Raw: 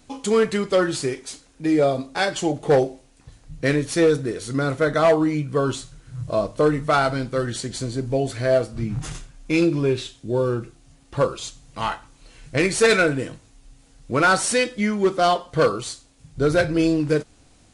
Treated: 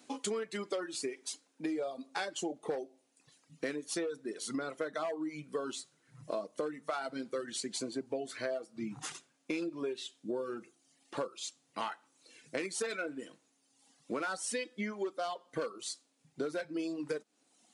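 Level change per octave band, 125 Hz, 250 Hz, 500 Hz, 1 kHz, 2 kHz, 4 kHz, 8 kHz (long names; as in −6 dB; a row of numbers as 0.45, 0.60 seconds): −27.5, −16.5, −17.0, −17.0, −17.5, −13.0, −11.0 decibels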